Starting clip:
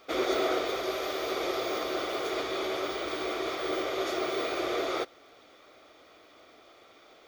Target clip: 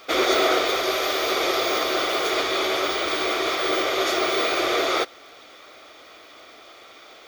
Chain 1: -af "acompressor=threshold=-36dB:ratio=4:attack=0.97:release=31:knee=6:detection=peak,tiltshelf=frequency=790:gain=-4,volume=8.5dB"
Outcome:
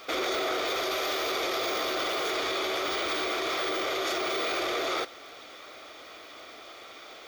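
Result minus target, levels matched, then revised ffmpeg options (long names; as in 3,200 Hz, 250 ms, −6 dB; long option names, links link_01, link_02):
downward compressor: peak gain reduction +12 dB
-af "tiltshelf=frequency=790:gain=-4,volume=8.5dB"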